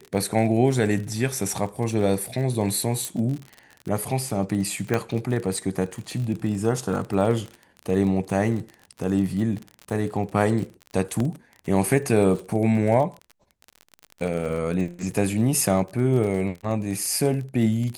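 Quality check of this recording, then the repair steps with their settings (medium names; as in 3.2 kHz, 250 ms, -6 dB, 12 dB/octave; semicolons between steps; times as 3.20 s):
crackle 36 per s -30 dBFS
3.05 s: pop
4.94 s: pop -10 dBFS
11.20 s: dropout 2.9 ms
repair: de-click; interpolate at 11.20 s, 2.9 ms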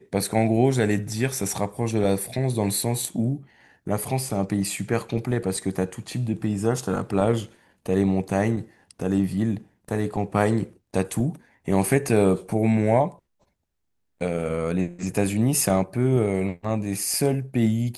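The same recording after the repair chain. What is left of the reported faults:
3.05 s: pop
4.94 s: pop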